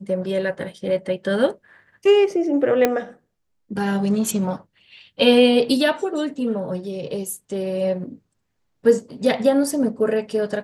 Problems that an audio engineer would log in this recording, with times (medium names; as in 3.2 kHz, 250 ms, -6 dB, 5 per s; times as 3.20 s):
2.85 s: pop -4 dBFS